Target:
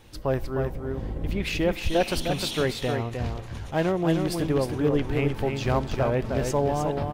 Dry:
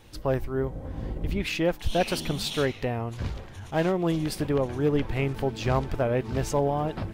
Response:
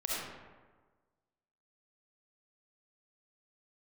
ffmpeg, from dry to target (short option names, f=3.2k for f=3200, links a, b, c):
-filter_complex "[0:a]aecho=1:1:308:0.531,asplit=2[a][b];[1:a]atrim=start_sample=2205[c];[b][c]afir=irnorm=-1:irlink=0,volume=-26.5dB[d];[a][d]amix=inputs=2:normalize=0"